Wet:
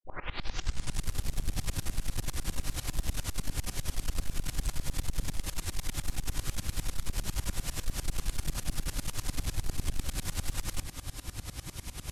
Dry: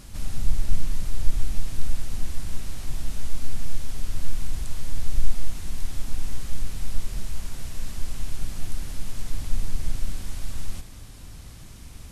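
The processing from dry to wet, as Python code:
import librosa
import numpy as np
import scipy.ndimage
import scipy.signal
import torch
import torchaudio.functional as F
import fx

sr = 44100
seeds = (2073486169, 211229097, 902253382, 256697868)

p1 = fx.tape_start_head(x, sr, length_s=1.06)
p2 = fx.low_shelf(p1, sr, hz=450.0, db=-5.0)
p3 = fx.notch_comb(p2, sr, f0_hz=220.0)
p4 = fx.dispersion(p3, sr, late='lows', ms=49.0, hz=610.0)
p5 = fx.fold_sine(p4, sr, drive_db=15, ceiling_db=-15.5)
p6 = p4 + (p5 * 10.0 ** (-7.0 / 20.0))
y = fx.tremolo_decay(p6, sr, direction='swelling', hz=10.0, depth_db=22)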